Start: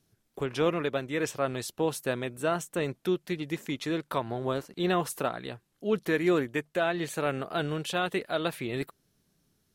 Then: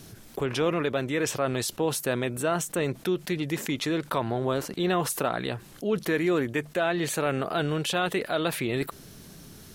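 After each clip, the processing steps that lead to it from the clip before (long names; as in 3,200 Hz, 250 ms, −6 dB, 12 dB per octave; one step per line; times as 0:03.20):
envelope flattener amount 50%
level −1 dB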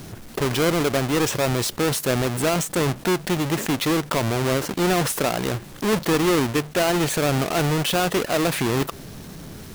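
each half-wave held at its own peak
in parallel at 0 dB: brickwall limiter −23.5 dBFS, peak gain reduction 11 dB
on the sum: level −2 dB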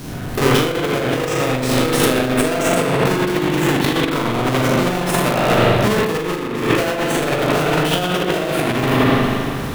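peak hold with a decay on every bin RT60 0.96 s
spring reverb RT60 2.4 s, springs 39/43 ms, chirp 50 ms, DRR −6 dB
compressor whose output falls as the input rises −16 dBFS, ratio −0.5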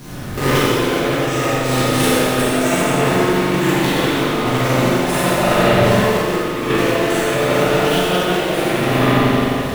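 dense smooth reverb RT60 2 s, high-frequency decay 1×, DRR −6.5 dB
level −6 dB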